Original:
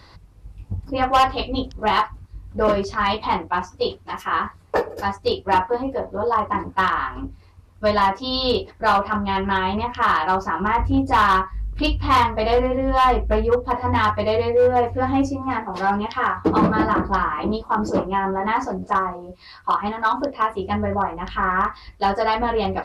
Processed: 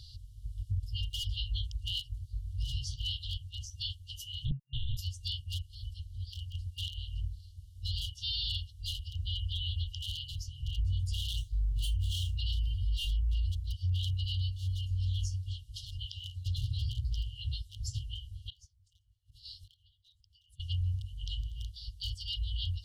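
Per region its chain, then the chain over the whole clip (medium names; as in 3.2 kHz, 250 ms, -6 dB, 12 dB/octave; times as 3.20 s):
4.45–4.97 s: Schmitt trigger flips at -31.5 dBFS + monotone LPC vocoder at 8 kHz 200 Hz
11.37–12.37 s: median filter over 9 samples + peaking EQ 1.6 kHz +4 dB 1.5 oct
18.50–20.60 s: inverted gate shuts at -27 dBFS, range -26 dB + decay stretcher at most 70 dB/s
whole clip: FFT band-reject 130–2800 Hz; dynamic bell 4.5 kHz, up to -5 dB, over -45 dBFS, Q 1.4; peak limiter -25 dBFS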